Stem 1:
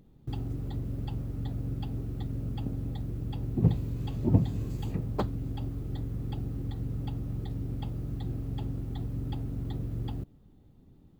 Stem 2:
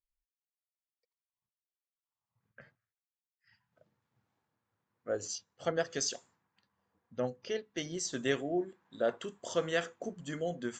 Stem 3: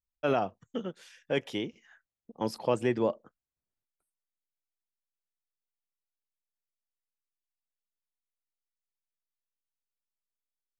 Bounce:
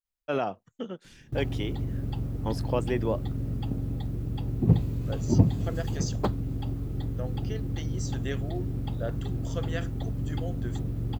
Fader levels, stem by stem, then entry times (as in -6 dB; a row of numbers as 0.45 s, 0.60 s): +3.0 dB, -4.5 dB, -1.0 dB; 1.05 s, 0.00 s, 0.05 s